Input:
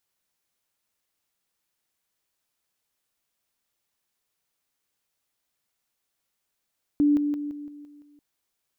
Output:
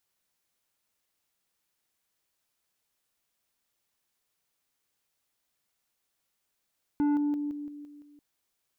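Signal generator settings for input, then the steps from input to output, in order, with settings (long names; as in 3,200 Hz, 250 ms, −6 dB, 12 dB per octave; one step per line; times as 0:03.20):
level staircase 292 Hz −16.5 dBFS, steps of −6 dB, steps 7, 0.17 s 0.00 s
soft clipping −23.5 dBFS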